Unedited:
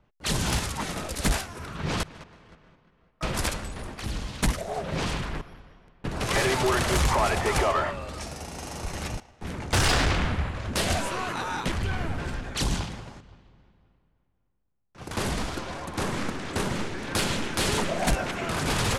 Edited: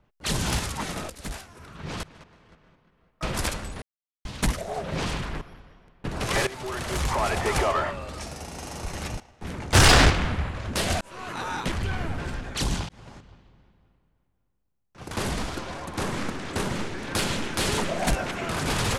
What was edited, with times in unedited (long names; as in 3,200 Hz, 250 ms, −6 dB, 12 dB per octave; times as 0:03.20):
0:01.10–0:03.29: fade in, from −13 dB
0:03.82–0:04.25: silence
0:06.47–0:07.43: fade in, from −16.5 dB
0:09.75–0:10.10: clip gain +7 dB
0:11.01–0:11.46: fade in linear
0:12.89–0:13.15: fade in